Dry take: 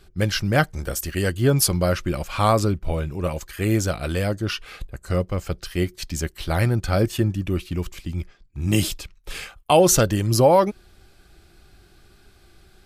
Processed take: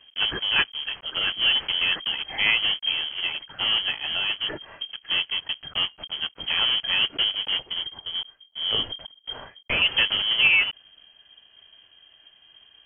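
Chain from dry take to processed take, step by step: block floating point 3-bit; 7.74–9.82 bell 490 Hz -11 dB 1.4 oct; inverted band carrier 3200 Hz; gain -4 dB

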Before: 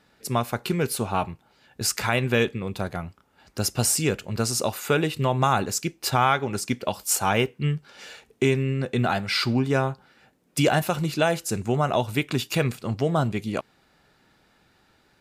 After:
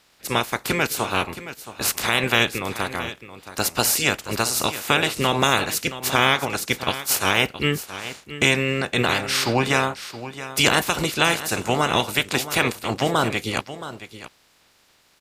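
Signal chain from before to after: spectral limiter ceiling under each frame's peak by 21 dB; on a send: echo 0.672 s -13.5 dB; on the sum: gain +2.5 dB

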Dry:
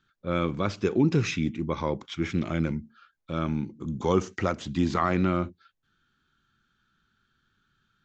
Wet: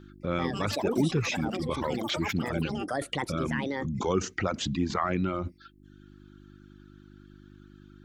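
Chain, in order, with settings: echoes that change speed 0.207 s, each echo +7 st, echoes 3, each echo -6 dB; in parallel at +1 dB: negative-ratio compressor -37 dBFS, ratio -1; on the sum: buzz 50 Hz, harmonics 7, -46 dBFS -1 dB/oct; reverb removal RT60 0.87 s; gain -3.5 dB

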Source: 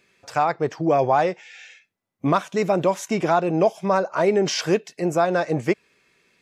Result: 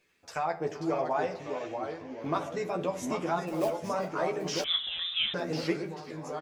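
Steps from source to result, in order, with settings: flange 0.45 Hz, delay 1.7 ms, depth 9.1 ms, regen -62%; in parallel at -0.5 dB: compressor, threshold -31 dBFS, peak gain reduction 13 dB; on the sum: bit-crush 12-bit; harmonic-percussive split harmonic -6 dB; 3.47–3.89 short-mantissa float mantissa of 2-bit; split-band echo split 910 Hz, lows 0.1 s, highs 0.387 s, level -16 dB; echoes that change speed 0.501 s, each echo -2 st, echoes 3, each echo -6 dB; doubler 12 ms -4 dB; on a send at -9.5 dB: reverb RT60 0.50 s, pre-delay 4 ms; 4.64–5.34 on the sum: inverted band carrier 3800 Hz; gain -9 dB

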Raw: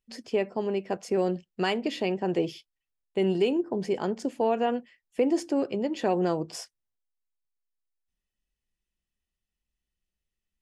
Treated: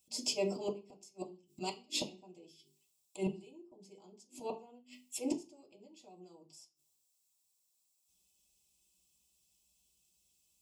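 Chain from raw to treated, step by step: HPF 49 Hz 24 dB/oct; tone controls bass 0 dB, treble +13 dB; notches 50/100/150/200/250/300/350/400 Hz; limiter -20.5 dBFS, peak gain reduction 9.5 dB; auto swell 0.236 s; flipped gate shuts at -28 dBFS, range -34 dB; Butterworth band-stop 1700 Hz, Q 1.2; reverb RT60 0.30 s, pre-delay 3 ms, DRR -3.5 dB; gain +3 dB

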